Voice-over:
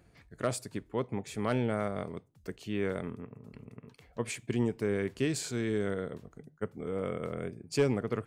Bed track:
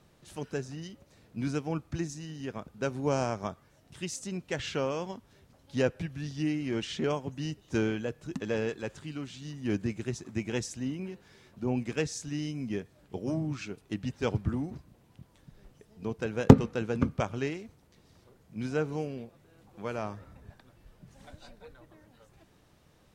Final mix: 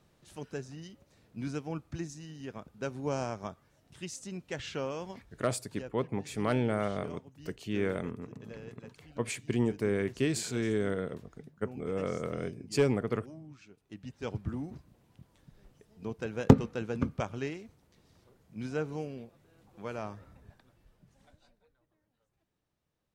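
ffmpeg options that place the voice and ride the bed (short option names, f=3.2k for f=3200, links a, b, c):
-filter_complex "[0:a]adelay=5000,volume=1dB[a];[1:a]volume=8.5dB,afade=t=out:st=5.18:d=0.32:silence=0.251189,afade=t=in:st=13.74:d=0.99:silence=0.223872,afade=t=out:st=20.26:d=1.42:silence=0.133352[b];[a][b]amix=inputs=2:normalize=0"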